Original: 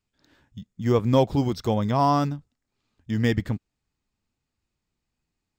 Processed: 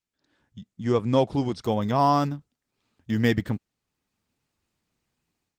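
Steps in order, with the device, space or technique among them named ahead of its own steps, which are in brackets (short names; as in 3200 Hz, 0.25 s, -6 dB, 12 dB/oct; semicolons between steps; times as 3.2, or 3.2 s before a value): video call (HPF 130 Hz 6 dB/oct; AGC gain up to 15.5 dB; gain -8.5 dB; Opus 24 kbps 48000 Hz)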